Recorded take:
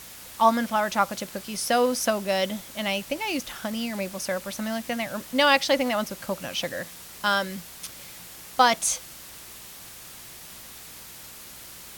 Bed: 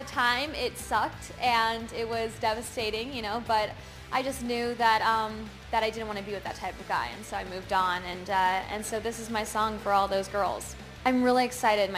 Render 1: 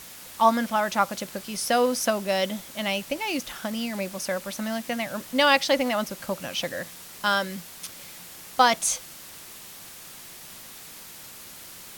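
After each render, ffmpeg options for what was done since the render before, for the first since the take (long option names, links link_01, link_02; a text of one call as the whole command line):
ffmpeg -i in.wav -af "bandreject=frequency=60:width_type=h:width=4,bandreject=frequency=120:width_type=h:width=4" out.wav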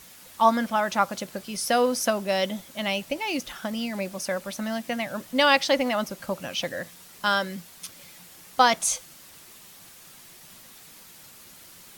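ffmpeg -i in.wav -af "afftdn=noise_reduction=6:noise_floor=-44" out.wav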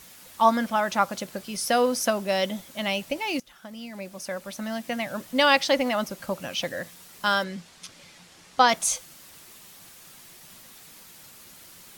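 ffmpeg -i in.wav -filter_complex "[0:a]asplit=3[link_01][link_02][link_03];[link_01]afade=type=out:start_time=7.43:duration=0.02[link_04];[link_02]lowpass=6800,afade=type=in:start_time=7.43:duration=0.02,afade=type=out:start_time=8.67:duration=0.02[link_05];[link_03]afade=type=in:start_time=8.67:duration=0.02[link_06];[link_04][link_05][link_06]amix=inputs=3:normalize=0,asplit=2[link_07][link_08];[link_07]atrim=end=3.4,asetpts=PTS-STARTPTS,afade=type=out:start_time=3.396:duration=0.004:curve=hsin:silence=0.141254[link_09];[link_08]atrim=start=3.4,asetpts=PTS-STARTPTS,afade=type=in:duration=1.67:silence=0.141254[link_10];[link_09][link_10]concat=n=2:v=0:a=1" out.wav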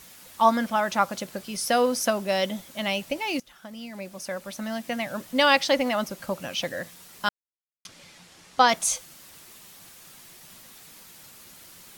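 ffmpeg -i in.wav -filter_complex "[0:a]asplit=3[link_01][link_02][link_03];[link_01]atrim=end=7.29,asetpts=PTS-STARTPTS,afade=type=out:start_time=7.286:duration=0.004:curve=hsin[link_04];[link_02]atrim=start=7.29:end=7.85,asetpts=PTS-STARTPTS,volume=0[link_05];[link_03]atrim=start=7.85,asetpts=PTS-STARTPTS,afade=type=in:duration=0.004:curve=hsin[link_06];[link_04][link_05][link_06]concat=n=3:v=0:a=1" out.wav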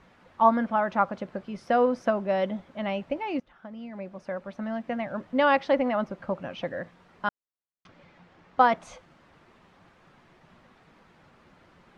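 ffmpeg -i in.wav -af "lowpass=1500" out.wav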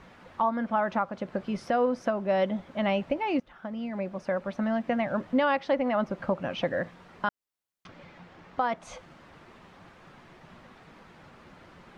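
ffmpeg -i in.wav -filter_complex "[0:a]asplit=2[link_01][link_02];[link_02]acompressor=threshold=-31dB:ratio=6,volume=-1dB[link_03];[link_01][link_03]amix=inputs=2:normalize=0,alimiter=limit=-16dB:level=0:latency=1:release=449" out.wav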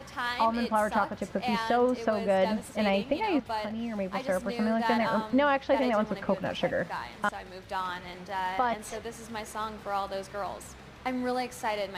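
ffmpeg -i in.wav -i bed.wav -filter_complex "[1:a]volume=-7dB[link_01];[0:a][link_01]amix=inputs=2:normalize=0" out.wav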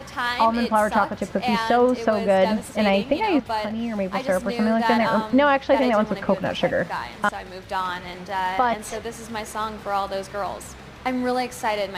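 ffmpeg -i in.wav -af "volume=7dB" out.wav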